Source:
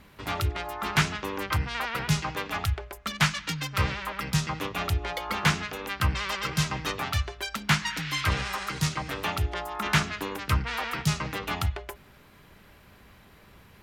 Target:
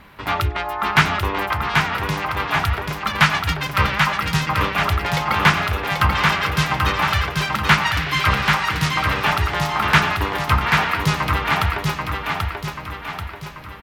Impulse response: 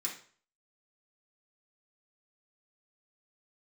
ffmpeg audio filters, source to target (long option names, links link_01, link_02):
-filter_complex "[0:a]firequalizer=gain_entry='entry(460,0);entry(900,6);entry(7000,-6);entry(15000,0)':delay=0.05:min_phase=1,asettb=1/sr,asplit=3[link_01][link_02][link_03];[link_01]atrim=end=1.524[link_04];[link_02]atrim=start=1.52:end=2.4,asetpts=PTS-STARTPTS,afade=type=in:duration=0.004:curve=qsin,afade=type=out:start_time=0.876:duration=0.004:curve=qsin,acompressor=threshold=-27dB:ratio=4[link_05];[link_03]atrim=start=2.396[link_06];[link_04][link_05]acrossfade=duration=0.004:curve1=hsin:curve2=qsin[link_07];[link_07][link_06]acrossfade=duration=0.004:curve1=qsin:curve2=hsin,aecho=1:1:786|1572|2358|3144|3930|4716|5502:0.668|0.334|0.167|0.0835|0.0418|0.0209|0.0104,volume=5.5dB"